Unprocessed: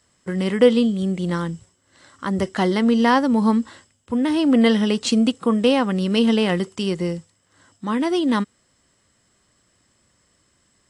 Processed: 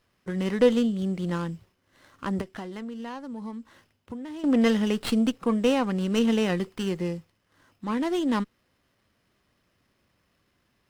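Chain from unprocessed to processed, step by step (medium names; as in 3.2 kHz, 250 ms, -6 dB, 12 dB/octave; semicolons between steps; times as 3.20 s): 2.41–4.44 s: compression 6:1, threshold -30 dBFS, peak gain reduction 16.5 dB; sliding maximum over 5 samples; trim -5.5 dB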